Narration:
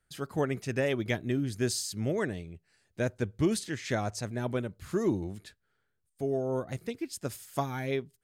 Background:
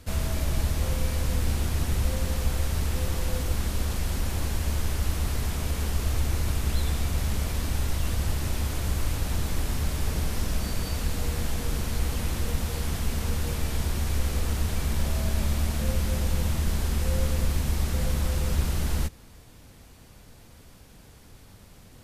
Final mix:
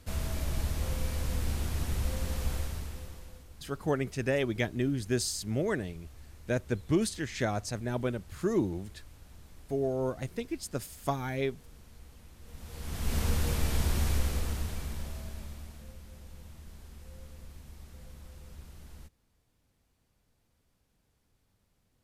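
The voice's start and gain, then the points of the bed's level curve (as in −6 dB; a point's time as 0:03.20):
3.50 s, 0.0 dB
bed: 0:02.55 −6 dB
0:03.48 −25 dB
0:12.38 −25 dB
0:13.16 −1 dB
0:14.06 −1 dB
0:15.99 −23 dB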